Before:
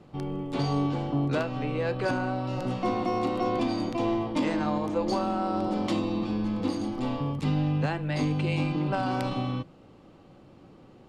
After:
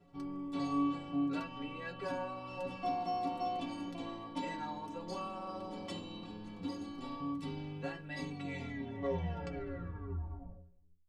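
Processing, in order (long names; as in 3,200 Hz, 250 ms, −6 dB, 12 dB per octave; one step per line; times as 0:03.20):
turntable brake at the end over 2.83 s
stiff-string resonator 83 Hz, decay 0.53 s, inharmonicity 0.03
level +1 dB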